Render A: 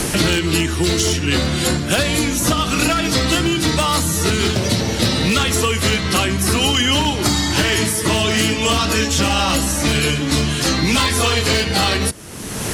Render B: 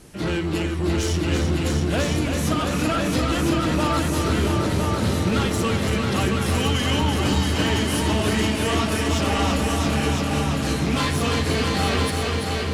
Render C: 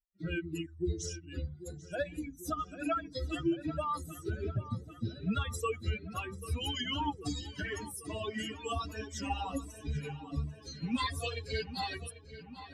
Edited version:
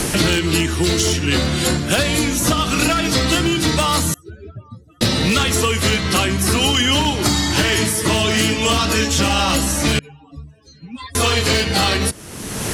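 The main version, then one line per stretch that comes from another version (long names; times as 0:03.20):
A
0:04.14–0:05.01: punch in from C
0:09.99–0:11.15: punch in from C
not used: B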